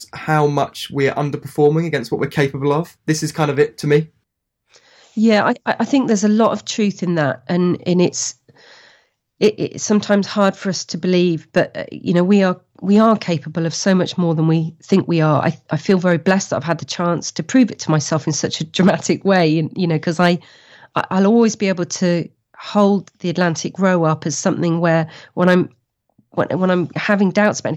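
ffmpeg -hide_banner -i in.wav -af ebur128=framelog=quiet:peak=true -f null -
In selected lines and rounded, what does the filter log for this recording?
Integrated loudness:
  I:         -17.3 LUFS
  Threshold: -27.7 LUFS
Loudness range:
  LRA:         2.4 LU
  Threshold: -37.7 LUFS
  LRA low:   -19.0 LUFS
  LRA high:  -16.6 LUFS
True peak:
  Peak:       -4.2 dBFS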